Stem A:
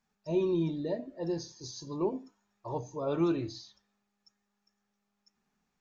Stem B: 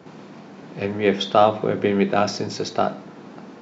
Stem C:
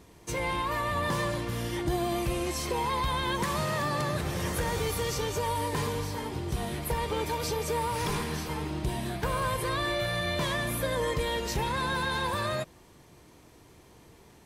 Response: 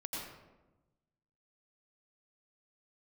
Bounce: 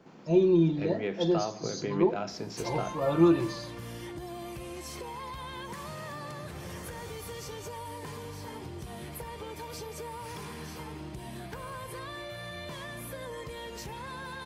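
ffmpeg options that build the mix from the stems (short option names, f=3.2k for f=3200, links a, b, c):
-filter_complex "[0:a]bandreject=f=5.5k:w=12,aecho=1:1:5.8:0.83,volume=2dB[a];[1:a]alimiter=limit=-11dB:level=0:latency=1:release=206,volume=-11dB[b];[2:a]highpass=62,acompressor=threshold=-37dB:ratio=6,asoftclip=type=tanh:threshold=-28.5dB,adelay=2300,volume=-0.5dB[c];[a][b][c]amix=inputs=3:normalize=0,bandreject=f=3.8k:w=23"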